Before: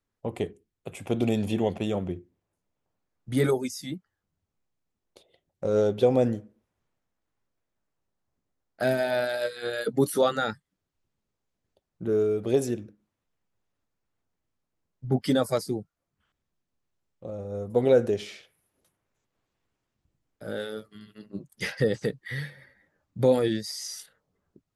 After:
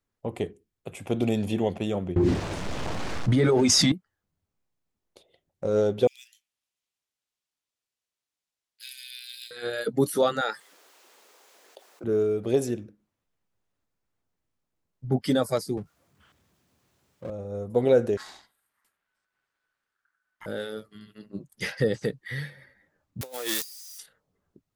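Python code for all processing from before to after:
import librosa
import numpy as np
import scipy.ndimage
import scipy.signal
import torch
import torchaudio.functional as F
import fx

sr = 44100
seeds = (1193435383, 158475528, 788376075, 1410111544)

y = fx.chain(x, sr, fx.law_mismatch(coded='mu'),
    fx.air_absorb(metres=100.0),
    fx.env_flatten(amount_pct=100), at=(2.16, 3.92))
y = fx.chain(y, sr, fx.steep_highpass(hz=2600.0, slope=36),
    fx.high_shelf(hz=8300.0, db=6.5),
    fx.resample_linear(factor=2), at=(6.07, 9.51))
y = fx.chain(y, sr, fx.highpass(hz=430.0, slope=24),
    fx.peak_eq(hz=610.0, db=-2.5, octaves=0.27),
    fx.env_flatten(amount_pct=50), at=(10.41, 12.04))
y = fx.chain(y, sr, fx.highpass(hz=62.0, slope=24),
    fx.power_curve(exponent=0.7), at=(15.77, 17.3))
y = fx.chain(y, sr, fx.peak_eq(hz=4100.0, db=-3.5, octaves=0.21),
    fx.ring_mod(carrier_hz=1500.0), at=(18.17, 20.46))
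y = fx.chain(y, sr, fx.crossing_spikes(level_db=-20.5),
    fx.highpass(hz=700.0, slope=12),
    fx.over_compress(threshold_db=-34.0, ratio=-0.5), at=(23.21, 23.99))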